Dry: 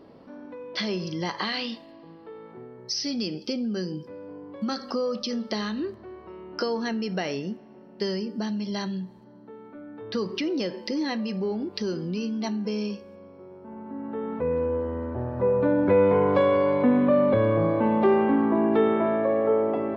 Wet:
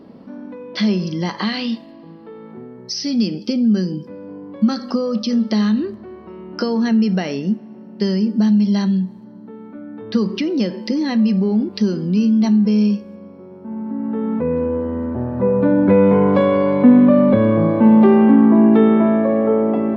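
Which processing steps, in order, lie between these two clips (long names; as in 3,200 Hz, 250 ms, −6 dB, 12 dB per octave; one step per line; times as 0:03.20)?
parametric band 210 Hz +12 dB 0.67 octaves
level +4 dB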